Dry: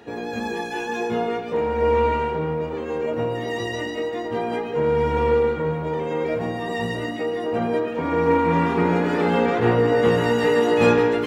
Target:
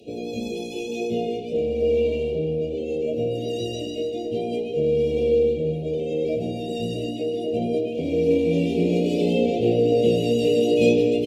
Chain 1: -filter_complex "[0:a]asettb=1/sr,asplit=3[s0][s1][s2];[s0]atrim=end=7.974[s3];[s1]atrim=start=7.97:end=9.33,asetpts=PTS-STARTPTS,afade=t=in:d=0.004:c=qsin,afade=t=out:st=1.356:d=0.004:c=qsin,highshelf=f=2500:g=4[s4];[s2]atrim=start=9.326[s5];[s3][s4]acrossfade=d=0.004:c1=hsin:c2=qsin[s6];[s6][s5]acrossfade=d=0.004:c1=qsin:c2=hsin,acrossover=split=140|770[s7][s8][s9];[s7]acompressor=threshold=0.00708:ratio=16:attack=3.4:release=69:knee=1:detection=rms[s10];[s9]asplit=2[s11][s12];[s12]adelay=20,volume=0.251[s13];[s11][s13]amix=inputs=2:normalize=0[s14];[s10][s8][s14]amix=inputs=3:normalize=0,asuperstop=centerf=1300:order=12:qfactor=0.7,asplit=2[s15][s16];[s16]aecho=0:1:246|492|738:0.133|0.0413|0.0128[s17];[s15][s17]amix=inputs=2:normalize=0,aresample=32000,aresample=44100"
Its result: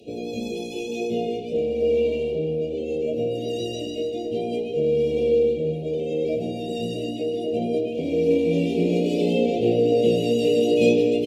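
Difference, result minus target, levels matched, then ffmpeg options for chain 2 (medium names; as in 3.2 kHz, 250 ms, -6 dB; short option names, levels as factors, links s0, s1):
compression: peak gain reduction +7.5 dB
-filter_complex "[0:a]asettb=1/sr,asplit=3[s0][s1][s2];[s0]atrim=end=7.974[s3];[s1]atrim=start=7.97:end=9.33,asetpts=PTS-STARTPTS,afade=t=in:d=0.004:c=qsin,afade=t=out:st=1.356:d=0.004:c=qsin,highshelf=f=2500:g=4[s4];[s2]atrim=start=9.326[s5];[s3][s4]acrossfade=d=0.004:c1=hsin:c2=qsin[s6];[s6][s5]acrossfade=d=0.004:c1=qsin:c2=hsin,acrossover=split=140|770[s7][s8][s9];[s7]acompressor=threshold=0.0178:ratio=16:attack=3.4:release=69:knee=1:detection=rms[s10];[s9]asplit=2[s11][s12];[s12]adelay=20,volume=0.251[s13];[s11][s13]amix=inputs=2:normalize=0[s14];[s10][s8][s14]amix=inputs=3:normalize=0,asuperstop=centerf=1300:order=12:qfactor=0.7,asplit=2[s15][s16];[s16]aecho=0:1:246|492|738:0.133|0.0413|0.0128[s17];[s15][s17]amix=inputs=2:normalize=0,aresample=32000,aresample=44100"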